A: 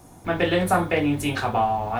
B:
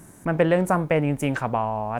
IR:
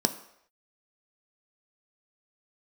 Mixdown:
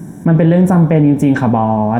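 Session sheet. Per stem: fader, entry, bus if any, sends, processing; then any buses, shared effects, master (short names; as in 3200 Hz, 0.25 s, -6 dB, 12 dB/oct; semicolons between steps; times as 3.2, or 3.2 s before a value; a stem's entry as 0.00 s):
-5.0 dB, 0.00 s, send -13.5 dB, dry
+0.5 dB, 0.00 s, send -6 dB, high shelf 10000 Hz +10.5 dB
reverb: on, pre-delay 3 ms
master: tone controls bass +12 dB, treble -7 dB; limiter -3 dBFS, peak gain reduction 9 dB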